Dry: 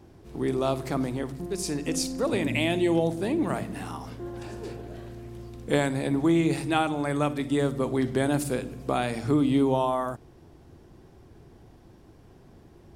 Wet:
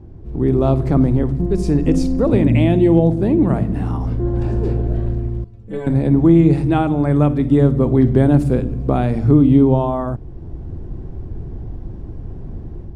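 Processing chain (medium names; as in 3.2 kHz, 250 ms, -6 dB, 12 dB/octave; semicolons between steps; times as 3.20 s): tilt EQ -4.5 dB/octave; level rider gain up to 8 dB; 5.44–5.87 s: inharmonic resonator 100 Hz, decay 0.37 s, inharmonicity 0.008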